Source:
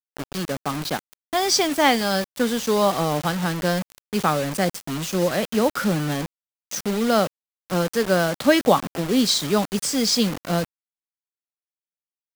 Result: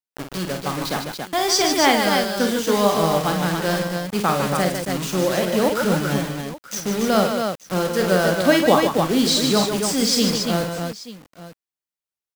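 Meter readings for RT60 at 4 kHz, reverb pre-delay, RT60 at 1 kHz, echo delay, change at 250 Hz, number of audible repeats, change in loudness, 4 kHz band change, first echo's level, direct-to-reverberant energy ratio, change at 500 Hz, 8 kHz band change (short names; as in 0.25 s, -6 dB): none, none, none, 49 ms, +2.0 dB, 4, +2.0 dB, +2.5 dB, -7.0 dB, none, +2.5 dB, +2.5 dB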